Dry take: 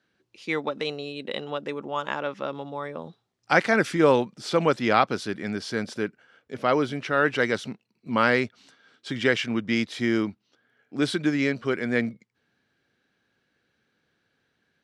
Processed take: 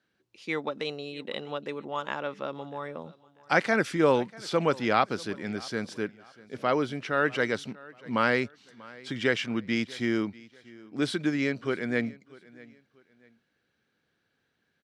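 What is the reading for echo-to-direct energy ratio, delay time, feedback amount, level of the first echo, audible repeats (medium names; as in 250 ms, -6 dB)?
-21.5 dB, 641 ms, 31%, -22.0 dB, 2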